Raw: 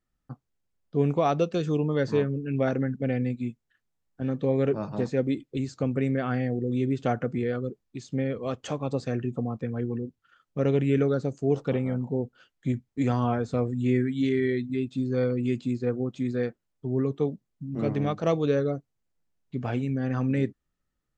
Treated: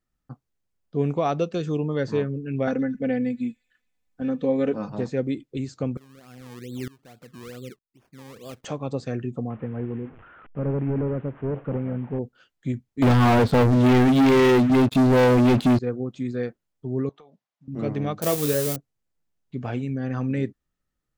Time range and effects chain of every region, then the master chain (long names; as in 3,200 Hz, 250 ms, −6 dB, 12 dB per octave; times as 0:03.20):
0:02.67–0:04.90: comb filter 4 ms, depth 68% + delay with a high-pass on its return 113 ms, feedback 58%, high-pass 3,900 Hz, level −16.5 dB
0:05.97–0:08.65: downward compressor 1.5 to 1, threshold −33 dBFS + sample-and-hold swept by an LFO 22× 2.3 Hz + tremolo with a ramp in dB swelling 1.1 Hz, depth 24 dB
0:09.50–0:12.19: linear delta modulator 16 kbit/s, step −41 dBFS + low-pass filter 1,700 Hz
0:13.02–0:15.79: Butterworth low-pass 4,500 Hz + leveller curve on the samples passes 5
0:17.09–0:17.68: band-pass filter 140–5,400 Hz + low shelf with overshoot 490 Hz −14 dB, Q 1.5 + downward compressor 16 to 1, threshold −46 dBFS
0:18.22–0:18.76: spike at every zero crossing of −20 dBFS + high-shelf EQ 5,100 Hz +8.5 dB + double-tracking delay 27 ms −11 dB
whole clip: no processing